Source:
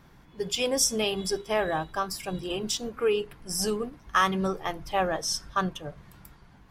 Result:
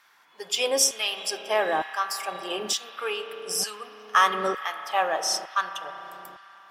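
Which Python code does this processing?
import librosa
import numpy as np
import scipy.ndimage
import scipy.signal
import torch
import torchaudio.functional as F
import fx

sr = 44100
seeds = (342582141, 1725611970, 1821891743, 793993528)

y = fx.rev_spring(x, sr, rt60_s=3.7, pass_ms=(33,), chirp_ms=60, drr_db=8.0)
y = fx.cheby_harmonics(y, sr, harmonics=(8,), levels_db=(-41,), full_scale_db=-10.0)
y = fx.filter_lfo_highpass(y, sr, shape='saw_down', hz=1.1, low_hz=380.0, high_hz=1500.0, q=0.96)
y = y * 10.0 ** (3.0 / 20.0)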